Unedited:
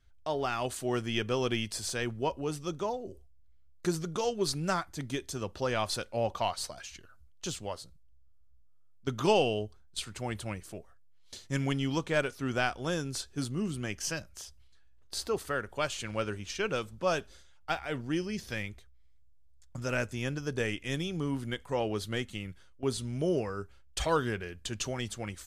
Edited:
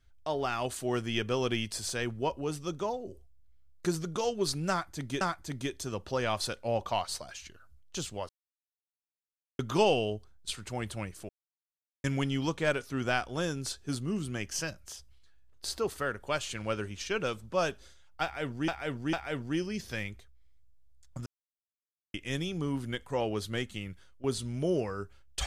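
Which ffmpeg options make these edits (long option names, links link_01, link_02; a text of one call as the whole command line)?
ffmpeg -i in.wav -filter_complex "[0:a]asplit=10[link_01][link_02][link_03][link_04][link_05][link_06][link_07][link_08][link_09][link_10];[link_01]atrim=end=5.212[link_11];[link_02]atrim=start=4.698:end=7.78,asetpts=PTS-STARTPTS,afade=type=out:start_time=3.078:duration=0.004:curve=hsin[link_12];[link_03]atrim=start=7.78:end=9.08,asetpts=PTS-STARTPTS,volume=0[link_13];[link_04]atrim=start=9.08:end=10.78,asetpts=PTS-STARTPTS,afade=type=in:duration=0.004:curve=hsin,afade=type=out:start_time=1.696:duration=0.004:curve=hsin[link_14];[link_05]atrim=start=10.78:end=11.53,asetpts=PTS-STARTPTS,volume=0[link_15];[link_06]atrim=start=11.53:end=18.172,asetpts=PTS-STARTPTS,afade=type=in:duration=0.004:curve=hsin[link_16];[link_07]atrim=start=17.718:end=18.172[link_17];[link_08]atrim=start=17.718:end=19.85,asetpts=PTS-STARTPTS,afade=type=out:start_time=2.128:duration=0.004:curve=hsin[link_18];[link_09]atrim=start=19.85:end=20.73,asetpts=PTS-STARTPTS,volume=0[link_19];[link_10]atrim=start=20.73,asetpts=PTS-STARTPTS,afade=type=in:duration=0.004:curve=hsin[link_20];[link_12][link_13][link_14][link_15][link_16]concat=n=5:v=0:a=1[link_21];[link_11][link_21]acrossfade=duration=0.004:curve1=hsin:curve2=hsin[link_22];[link_22][link_17]acrossfade=duration=0.004:curve1=hsin:curve2=hsin[link_23];[link_18][link_19][link_20]concat=n=3:v=0:a=1[link_24];[link_23][link_24]acrossfade=duration=0.004:curve1=hsin:curve2=hsin" out.wav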